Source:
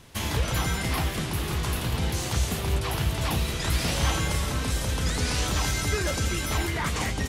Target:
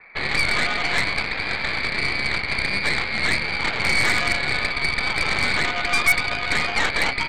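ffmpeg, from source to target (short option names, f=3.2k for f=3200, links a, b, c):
-af "highpass=f=530:t=q:w=3.7,lowpass=f=2.4k:t=q:w=0.5098,lowpass=f=2.4k:t=q:w=0.6013,lowpass=f=2.4k:t=q:w=0.9,lowpass=f=2.4k:t=q:w=2.563,afreqshift=-2800,aeval=exprs='0.237*(cos(1*acos(clip(val(0)/0.237,-1,1)))-cos(1*PI/2))+0.0422*(cos(8*acos(clip(val(0)/0.237,-1,1)))-cos(8*PI/2))':c=same,volume=5dB"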